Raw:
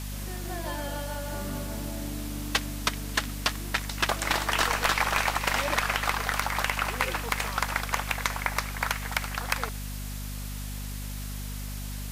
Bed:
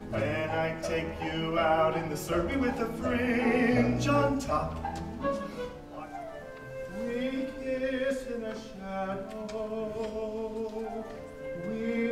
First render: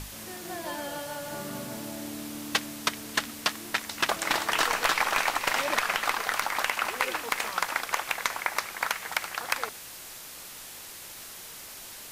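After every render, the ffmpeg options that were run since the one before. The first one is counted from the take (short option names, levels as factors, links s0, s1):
-af "bandreject=f=50:t=h:w=6,bandreject=f=100:t=h:w=6,bandreject=f=150:t=h:w=6,bandreject=f=200:t=h:w=6,bandreject=f=250:t=h:w=6"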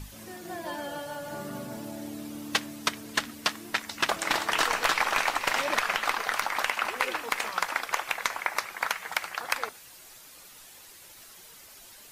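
-af "afftdn=nr=9:nf=-44"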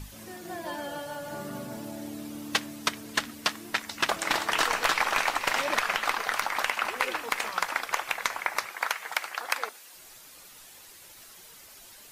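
-filter_complex "[0:a]asettb=1/sr,asplit=3[s0][s1][s2];[s0]atrim=end=8.704[s3];[s1]atrim=start=8.7:end=9.95,asetpts=PTS-STARTPTS,afade=t=in:d=0.004:c=qsin,afade=t=out:st=1.246:d=0.004:c=qsin,highpass=310[s4];[s2]atrim=start=9.946[s5];[s3][s4]acrossfade=d=0.004:c1=hsin:c2=qsin[s6];[s6][s5]acrossfade=d=0.004:c1=qsin:c2=hsin"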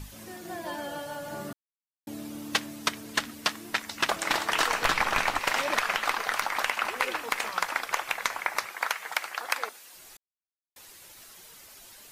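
-filter_complex "[0:a]asettb=1/sr,asplit=3[s0][s1][s2];[s0]atrim=end=4.824[s3];[s1]atrim=start=4.82:end=5.39,asetpts=PTS-STARTPTS,afade=t=in:d=0.004:c=qsin,afade=t=out:st=0.566:d=0.004:c=qsin,bass=f=250:g=10,treble=f=4000:g=-2[s4];[s2]atrim=start=5.386[s5];[s3][s4]acrossfade=d=0.004:c1=hsin:c2=qsin[s6];[s6][s5]acrossfade=d=0.004:c1=qsin:c2=hsin,asplit=5[s7][s8][s9][s10][s11];[s7]atrim=end=1.53,asetpts=PTS-STARTPTS,afade=t=out:st=1.526:d=0.004:c=hsin[s12];[s8]atrim=start=1.53:end=2.07,asetpts=PTS-STARTPTS,volume=0[s13];[s9]atrim=start=2.07:end=10.17,asetpts=PTS-STARTPTS,afade=t=in:d=0.004:c=hsin,afade=t=out:st=8.096:d=0.004:c=hsin[s14];[s10]atrim=start=10.17:end=10.76,asetpts=PTS-STARTPTS,volume=0[s15];[s11]atrim=start=10.76,asetpts=PTS-STARTPTS,afade=t=in:d=0.004:c=hsin[s16];[s12][s13][s14][s15][s16]concat=n=5:v=0:a=1"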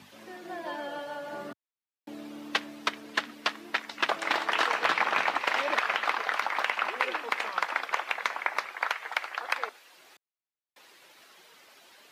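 -filter_complex "[0:a]highpass=f=100:w=0.5412,highpass=f=100:w=1.3066,acrossover=split=240 4400:gain=0.178 1 0.178[s0][s1][s2];[s0][s1][s2]amix=inputs=3:normalize=0"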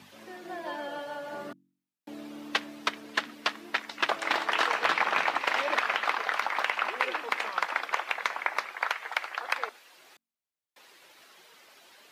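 -af "bandreject=f=46.35:t=h:w=4,bandreject=f=92.7:t=h:w=4,bandreject=f=139.05:t=h:w=4,bandreject=f=185.4:t=h:w=4,bandreject=f=231.75:t=h:w=4,bandreject=f=278.1:t=h:w=4,bandreject=f=324.45:t=h:w=4"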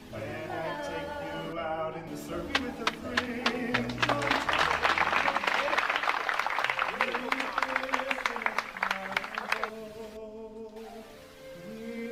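-filter_complex "[1:a]volume=0.398[s0];[0:a][s0]amix=inputs=2:normalize=0"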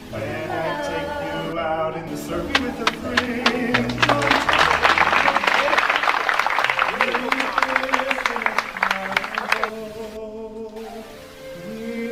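-af "volume=3.16,alimiter=limit=0.891:level=0:latency=1"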